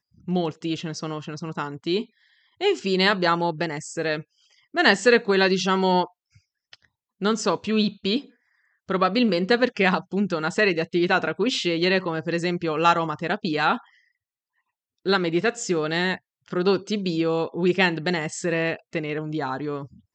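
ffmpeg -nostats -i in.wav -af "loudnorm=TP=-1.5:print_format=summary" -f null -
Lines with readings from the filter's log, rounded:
Input Integrated:    -23.7 LUFS
Input True Peak:      -4.1 dBTP
Input LRA:             4.1 LU
Input Threshold:     -34.2 LUFS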